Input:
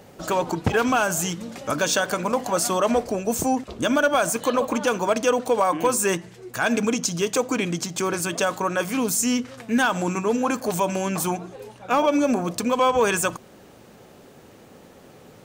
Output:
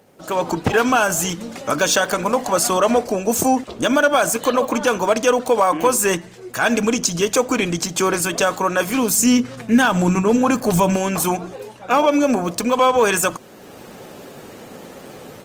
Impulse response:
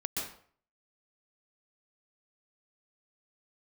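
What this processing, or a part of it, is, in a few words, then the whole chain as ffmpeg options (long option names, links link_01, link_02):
video call: -filter_complex "[0:a]asettb=1/sr,asplit=3[link_01][link_02][link_03];[link_01]atrim=end=9.174[link_04];[link_02]atrim=start=9.17:end=10.96,asetpts=PTS-STARTPTS,afade=type=in:duration=0.004:curve=qsin,afade=type=out:start_time=1.786:duration=0.004:curve=qsin,equalizer=frequency=140:width_type=o:width=1.2:gain=12[link_05];[link_03]atrim=start=10.956[link_06];[link_04][link_05]acrossfade=duration=0.004:curve1=hsin:curve2=qsin[link_07];[link_07][link_06]acrossfade=duration=0.004:curve1=qsin:curve2=hsin,highpass=frequency=150:poles=1,dynaudnorm=framelen=230:gausssize=3:maxgain=15dB,volume=-4dB" -ar 48000 -c:a libopus -b:a 24k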